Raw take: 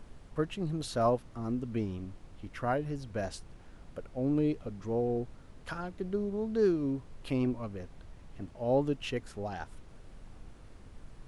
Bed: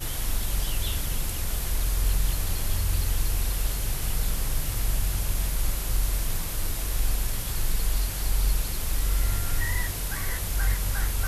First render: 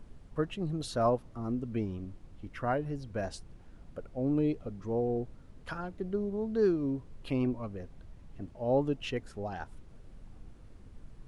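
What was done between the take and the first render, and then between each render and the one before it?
noise reduction 6 dB, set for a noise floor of -53 dBFS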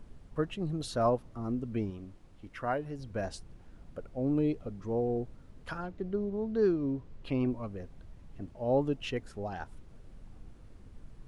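1.90–2.99 s: bass shelf 280 Hz -6.5 dB; 5.86–7.46 s: distance through air 56 m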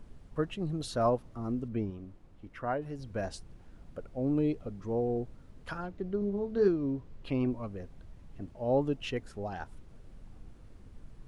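1.68–2.82 s: treble shelf 2.3 kHz -7.5 dB; 6.19–6.68 s: doubling 25 ms -6 dB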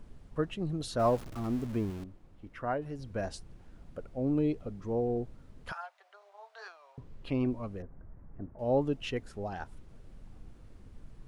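0.99–2.04 s: jump at every zero crossing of -41.5 dBFS; 5.72–6.98 s: steep high-pass 670 Hz 48 dB/octave; 7.82–8.59 s: inverse Chebyshev low-pass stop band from 4.2 kHz, stop band 50 dB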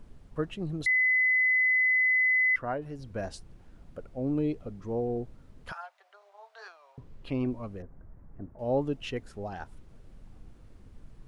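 0.86–2.56 s: bleep 2.02 kHz -21 dBFS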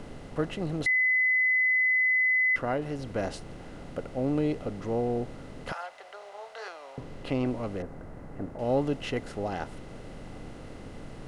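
spectral levelling over time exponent 0.6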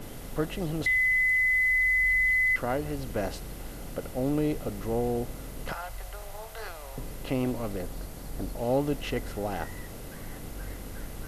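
add bed -15.5 dB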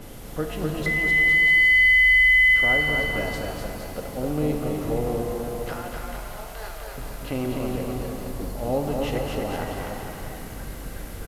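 on a send: bouncing-ball echo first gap 250 ms, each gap 0.85×, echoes 5; on the sum: pitch-shifted reverb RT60 2 s, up +7 st, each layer -8 dB, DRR 5 dB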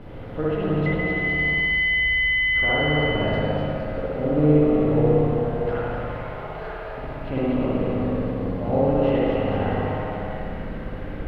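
distance through air 390 m; spring tank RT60 1.3 s, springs 60 ms, chirp 55 ms, DRR -5 dB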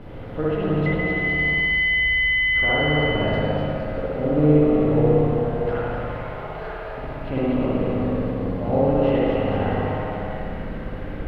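trim +1 dB

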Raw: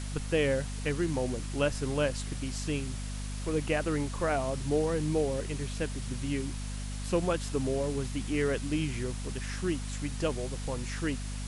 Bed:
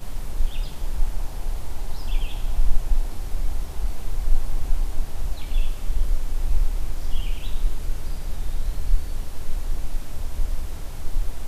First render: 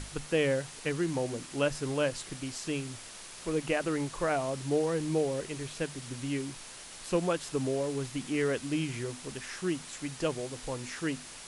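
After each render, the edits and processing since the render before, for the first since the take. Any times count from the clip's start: hum notches 50/100/150/200/250 Hz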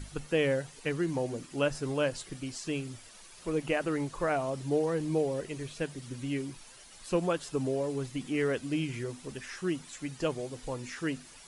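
noise reduction 10 dB, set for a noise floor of -47 dBFS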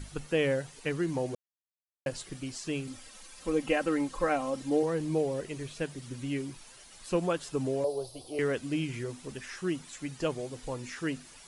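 1.35–2.06 s: mute; 2.87–4.83 s: comb 3.8 ms, depth 69%; 7.84–8.39 s: FFT filter 100 Hz 0 dB, 150 Hz -15 dB, 220 Hz -24 dB, 370 Hz 0 dB, 650 Hz +11 dB, 1.2 kHz -9 dB, 1.9 kHz -24 dB, 4.5 kHz +6 dB, 7.1 kHz -10 dB, 11 kHz +8 dB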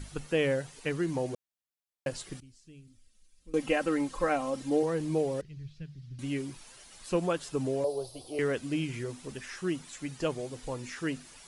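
2.40–3.54 s: amplifier tone stack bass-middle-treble 10-0-1; 5.41–6.19 s: FFT filter 160 Hz 0 dB, 250 Hz -17 dB, 540 Hz -24 dB, 930 Hz -28 dB, 1.7 kHz -19 dB, 4.9 kHz -13 dB, 8.6 kHz -30 dB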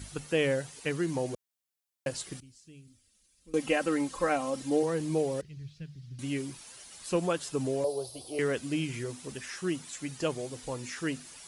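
high-pass 48 Hz; treble shelf 4.5 kHz +6 dB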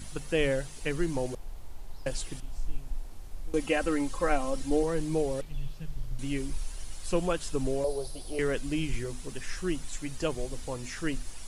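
add bed -14.5 dB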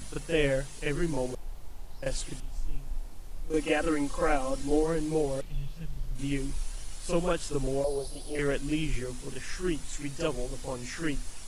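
reverse echo 36 ms -8 dB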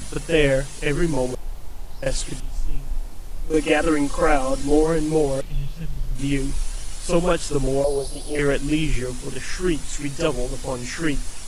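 trim +8.5 dB

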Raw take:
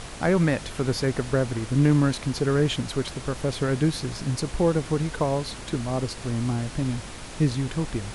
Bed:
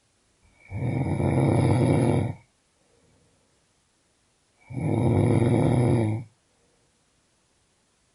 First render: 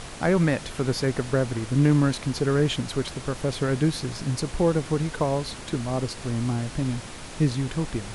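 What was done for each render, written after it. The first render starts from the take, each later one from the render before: de-hum 50 Hz, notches 2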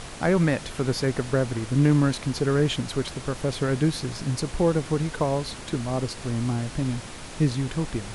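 no audible change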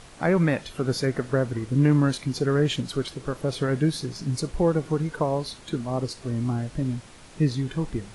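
noise print and reduce 9 dB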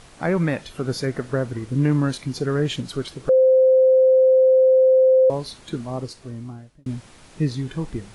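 3.29–5.30 s: bleep 520 Hz -11 dBFS; 5.80–6.86 s: fade out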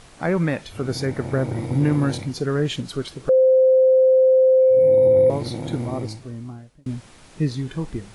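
add bed -8.5 dB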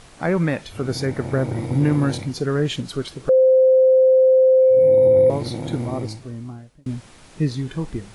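trim +1 dB

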